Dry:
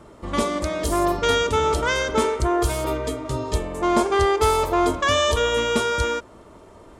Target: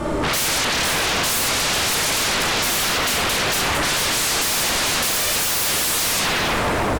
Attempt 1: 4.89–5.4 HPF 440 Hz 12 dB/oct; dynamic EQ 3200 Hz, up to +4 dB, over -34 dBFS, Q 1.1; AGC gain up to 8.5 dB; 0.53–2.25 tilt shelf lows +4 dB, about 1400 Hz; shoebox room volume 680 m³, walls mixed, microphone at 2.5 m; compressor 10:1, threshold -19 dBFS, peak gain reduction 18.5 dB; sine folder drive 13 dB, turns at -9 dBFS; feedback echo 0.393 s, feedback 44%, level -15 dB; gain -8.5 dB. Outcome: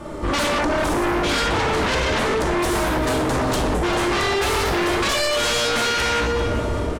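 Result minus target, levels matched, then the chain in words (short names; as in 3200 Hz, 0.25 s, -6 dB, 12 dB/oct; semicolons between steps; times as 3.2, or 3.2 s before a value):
sine folder: distortion -37 dB
4.89–5.4 HPF 440 Hz 12 dB/oct; dynamic EQ 3200 Hz, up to +4 dB, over -34 dBFS, Q 1.1; AGC gain up to 8.5 dB; 0.53–2.25 tilt shelf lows +4 dB, about 1400 Hz; shoebox room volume 680 m³, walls mixed, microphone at 2.5 m; compressor 10:1, threshold -19 dBFS, peak gain reduction 18.5 dB; sine folder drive 24 dB, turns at -9 dBFS; feedback echo 0.393 s, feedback 44%, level -15 dB; gain -8.5 dB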